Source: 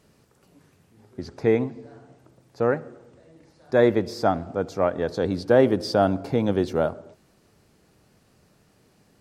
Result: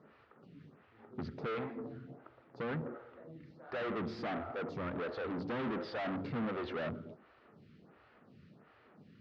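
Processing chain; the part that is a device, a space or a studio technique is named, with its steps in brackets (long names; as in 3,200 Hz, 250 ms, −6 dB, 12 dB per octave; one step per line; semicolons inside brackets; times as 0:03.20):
vibe pedal into a guitar amplifier (phaser with staggered stages 1.4 Hz; tube saturation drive 39 dB, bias 0.35; loudspeaker in its box 76–3,500 Hz, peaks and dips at 150 Hz +4 dB, 230 Hz +5 dB, 1,300 Hz +7 dB, 1,900 Hz +3 dB)
level +2 dB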